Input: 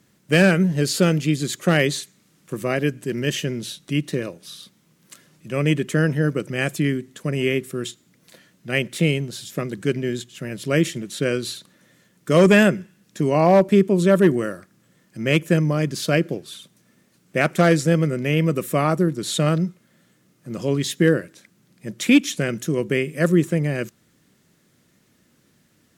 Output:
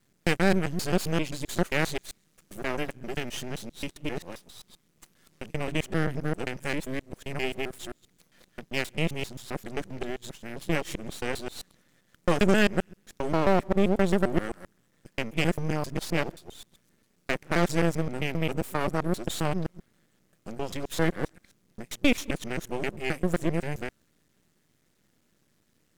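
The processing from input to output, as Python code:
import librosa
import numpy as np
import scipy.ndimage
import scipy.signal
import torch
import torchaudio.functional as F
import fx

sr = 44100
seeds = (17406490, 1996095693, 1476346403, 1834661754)

y = fx.local_reverse(x, sr, ms=132.0)
y = np.maximum(y, 0.0)
y = y * librosa.db_to_amplitude(-4.5)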